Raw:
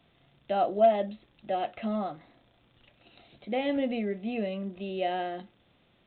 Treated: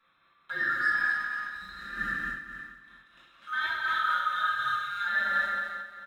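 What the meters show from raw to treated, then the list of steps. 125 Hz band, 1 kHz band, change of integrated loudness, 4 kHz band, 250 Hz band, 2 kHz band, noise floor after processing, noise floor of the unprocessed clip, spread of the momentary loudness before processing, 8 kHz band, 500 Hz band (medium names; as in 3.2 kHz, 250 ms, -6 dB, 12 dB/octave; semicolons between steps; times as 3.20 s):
-10.5 dB, +1.0 dB, +1.5 dB, +5.0 dB, -18.0 dB, +18.0 dB, -66 dBFS, -66 dBFS, 14 LU, no reading, -23.0 dB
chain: split-band scrambler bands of 1 kHz; spectral replace 1.35–2.00 s, 200–3700 Hz both; waveshaping leveller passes 1; peak limiter -22 dBFS, peak gain reduction 10.5 dB; on a send: feedback delay 223 ms, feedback 44%, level -5.5 dB; on the sum: gated-style reverb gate 420 ms falling, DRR -7.5 dB; random flutter of the level, depth 60%; trim -5.5 dB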